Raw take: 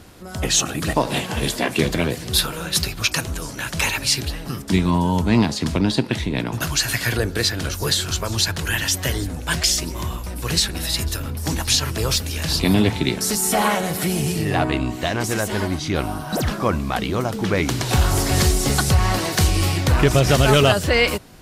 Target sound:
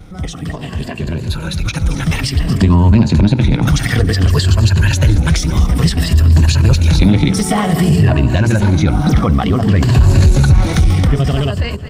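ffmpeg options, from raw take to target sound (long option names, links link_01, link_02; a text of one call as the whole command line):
ffmpeg -i in.wav -af "afftfilt=real='re*pow(10,8/40*sin(2*PI*(1.4*log(max(b,1)*sr/1024/100)/log(2)-(-0.31)*(pts-256)/sr)))':imag='im*pow(10,8/40*sin(2*PI*(1.4*log(max(b,1)*sr/1024/100)/log(2)-(-0.31)*(pts-256)/sr)))':win_size=1024:overlap=0.75,equalizer=frequency=12000:width=4.5:gain=-13.5,bandreject=frequency=60:width_type=h:width=6,bandreject=frequency=120:width_type=h:width=6,bandreject=frequency=180:width_type=h:width=6,bandreject=frequency=240:width_type=h:width=6,bandreject=frequency=300:width_type=h:width=6,bandreject=frequency=360:width_type=h:width=6,bandreject=frequency=420:width_type=h:width=6,bandreject=frequency=480:width_type=h:width=6,aecho=1:1:403|806|1209:0.112|0.0449|0.018,acompressor=threshold=-29dB:ratio=2.5,bass=frequency=250:gain=12,treble=frequency=4000:gain=-5,asoftclip=type=tanh:threshold=-12dB,dynaudnorm=framelen=710:gausssize=9:maxgain=12.5dB,atempo=1.8,volume=1.5dB" out.wav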